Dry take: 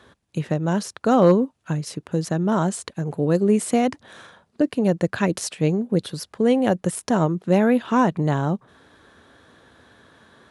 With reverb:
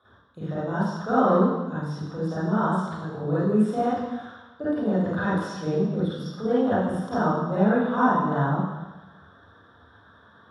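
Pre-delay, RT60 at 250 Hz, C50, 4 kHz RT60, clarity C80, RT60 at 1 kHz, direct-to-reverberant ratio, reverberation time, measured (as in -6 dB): 31 ms, 1.2 s, -5.5 dB, 1.2 s, 0.5 dB, 1.1 s, -11.5 dB, 1.1 s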